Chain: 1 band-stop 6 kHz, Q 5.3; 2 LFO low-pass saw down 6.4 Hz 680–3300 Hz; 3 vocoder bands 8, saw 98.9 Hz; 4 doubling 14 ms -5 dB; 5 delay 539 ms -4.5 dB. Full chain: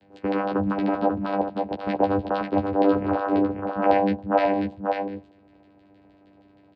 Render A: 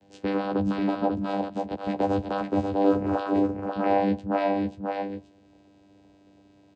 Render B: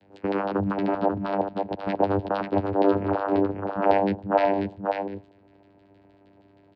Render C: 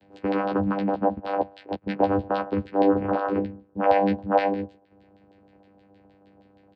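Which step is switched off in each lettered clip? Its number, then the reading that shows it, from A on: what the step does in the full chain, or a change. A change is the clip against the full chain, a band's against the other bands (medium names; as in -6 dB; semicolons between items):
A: 2, momentary loudness spread change +1 LU; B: 4, 125 Hz band +2.0 dB; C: 5, momentary loudness spread change +3 LU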